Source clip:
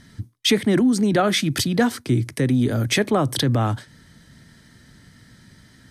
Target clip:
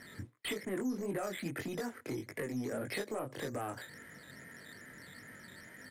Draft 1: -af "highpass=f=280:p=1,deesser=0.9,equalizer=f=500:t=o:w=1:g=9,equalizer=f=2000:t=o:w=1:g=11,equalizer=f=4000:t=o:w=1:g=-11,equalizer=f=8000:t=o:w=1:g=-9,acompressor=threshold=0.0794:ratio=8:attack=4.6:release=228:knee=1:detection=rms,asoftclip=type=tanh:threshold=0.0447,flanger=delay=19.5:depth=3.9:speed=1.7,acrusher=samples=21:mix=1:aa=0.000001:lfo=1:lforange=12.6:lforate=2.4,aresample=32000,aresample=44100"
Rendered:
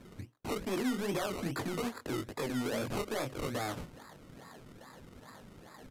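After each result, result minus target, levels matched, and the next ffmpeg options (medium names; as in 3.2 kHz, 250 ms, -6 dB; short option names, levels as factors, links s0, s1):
compression: peak gain reduction -5.5 dB; decimation with a swept rate: distortion +8 dB
-af "highpass=f=280:p=1,deesser=0.9,equalizer=f=500:t=o:w=1:g=9,equalizer=f=2000:t=o:w=1:g=11,equalizer=f=4000:t=o:w=1:g=-11,equalizer=f=8000:t=o:w=1:g=-9,acompressor=threshold=0.0376:ratio=8:attack=4.6:release=228:knee=1:detection=rms,asoftclip=type=tanh:threshold=0.0447,flanger=delay=19.5:depth=3.9:speed=1.7,acrusher=samples=21:mix=1:aa=0.000001:lfo=1:lforange=12.6:lforate=2.4,aresample=32000,aresample=44100"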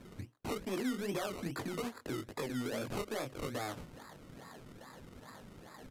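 decimation with a swept rate: distortion +8 dB
-af "highpass=f=280:p=1,deesser=0.9,equalizer=f=500:t=o:w=1:g=9,equalizer=f=2000:t=o:w=1:g=11,equalizer=f=4000:t=o:w=1:g=-11,equalizer=f=8000:t=o:w=1:g=-9,acompressor=threshold=0.0376:ratio=8:attack=4.6:release=228:knee=1:detection=rms,asoftclip=type=tanh:threshold=0.0447,flanger=delay=19.5:depth=3.9:speed=1.7,acrusher=samples=6:mix=1:aa=0.000001:lfo=1:lforange=3.6:lforate=2.4,aresample=32000,aresample=44100"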